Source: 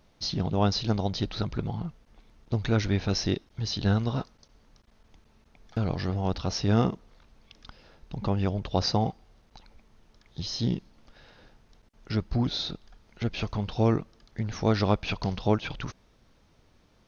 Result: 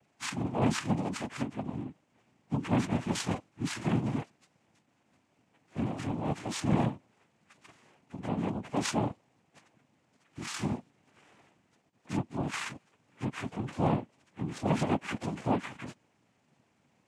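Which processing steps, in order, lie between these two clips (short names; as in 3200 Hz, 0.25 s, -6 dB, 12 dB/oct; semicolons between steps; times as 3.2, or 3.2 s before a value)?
inharmonic rescaling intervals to 81%; noise vocoder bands 4; gain -3 dB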